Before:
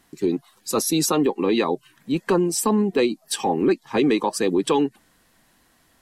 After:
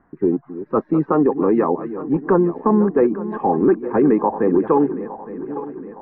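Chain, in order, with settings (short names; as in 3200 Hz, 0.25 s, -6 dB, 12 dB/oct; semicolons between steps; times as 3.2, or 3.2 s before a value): regenerating reverse delay 0.431 s, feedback 66%, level -12.5 dB; steep low-pass 1600 Hz 36 dB/oct; gain +4 dB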